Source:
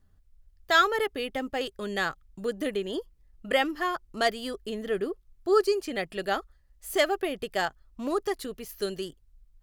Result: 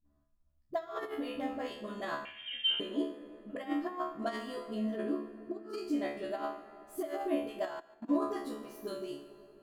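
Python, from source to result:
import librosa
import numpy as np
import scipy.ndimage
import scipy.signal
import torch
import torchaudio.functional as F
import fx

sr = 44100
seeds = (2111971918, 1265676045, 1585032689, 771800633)

y = fx.comb_fb(x, sr, f0_hz=72.0, decay_s=0.44, harmonics='all', damping=0.0, mix_pct=100)
y = fx.dispersion(y, sr, late='highs', ms=52.0, hz=320.0)
y = fx.over_compress(y, sr, threshold_db=-38.0, ratio=-0.5)
y = fx.rev_fdn(y, sr, rt60_s=3.8, lf_ratio=1.0, hf_ratio=0.55, size_ms=43.0, drr_db=9.0)
y = fx.level_steps(y, sr, step_db=22, at=(7.65, 8.1))
y = fx.small_body(y, sr, hz=(300.0, 640.0, 1000.0), ring_ms=40, db=18)
y = fx.freq_invert(y, sr, carrier_hz=3400, at=(2.25, 2.8))
y = fx.echo_feedback(y, sr, ms=143, feedback_pct=26, wet_db=-19.5)
y = F.gain(torch.from_numpy(y), -5.5).numpy()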